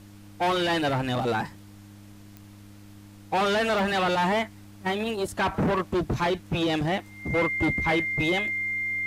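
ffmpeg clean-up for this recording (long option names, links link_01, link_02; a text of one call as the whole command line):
ffmpeg -i in.wav -af "adeclick=threshold=4,bandreject=frequency=101.6:width_type=h:width=4,bandreject=frequency=203.2:width_type=h:width=4,bandreject=frequency=304.8:width_type=h:width=4,bandreject=frequency=2100:width=30,agate=range=-21dB:threshold=-40dB" out.wav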